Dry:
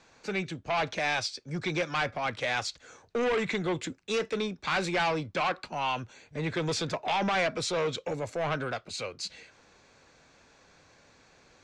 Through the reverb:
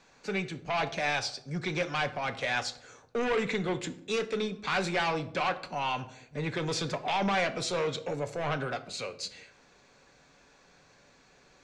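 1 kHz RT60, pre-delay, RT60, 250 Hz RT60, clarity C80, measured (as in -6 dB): 0.65 s, 4 ms, 0.75 s, 0.95 s, 18.0 dB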